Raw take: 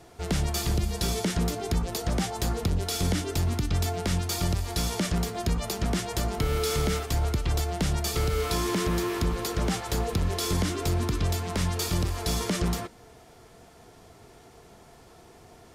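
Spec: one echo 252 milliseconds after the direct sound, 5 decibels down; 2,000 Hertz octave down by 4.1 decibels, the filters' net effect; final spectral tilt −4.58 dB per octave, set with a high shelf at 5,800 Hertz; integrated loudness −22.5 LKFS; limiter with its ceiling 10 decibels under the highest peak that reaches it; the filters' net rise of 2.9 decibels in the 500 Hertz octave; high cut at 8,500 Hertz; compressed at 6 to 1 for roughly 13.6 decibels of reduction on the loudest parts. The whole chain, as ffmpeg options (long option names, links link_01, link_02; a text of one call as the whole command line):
ffmpeg -i in.wav -af "lowpass=8500,equalizer=frequency=500:width_type=o:gain=4,equalizer=frequency=2000:width_type=o:gain=-6.5,highshelf=frequency=5800:gain=8.5,acompressor=threshold=-37dB:ratio=6,alimiter=level_in=9.5dB:limit=-24dB:level=0:latency=1,volume=-9.5dB,aecho=1:1:252:0.562,volume=19.5dB" out.wav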